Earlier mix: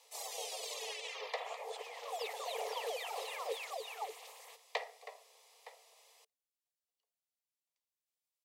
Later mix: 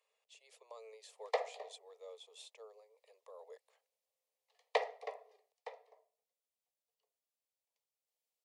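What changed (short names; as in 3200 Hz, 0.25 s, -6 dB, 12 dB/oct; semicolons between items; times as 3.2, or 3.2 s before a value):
first sound: muted; second sound: remove HPF 1300 Hz 6 dB/oct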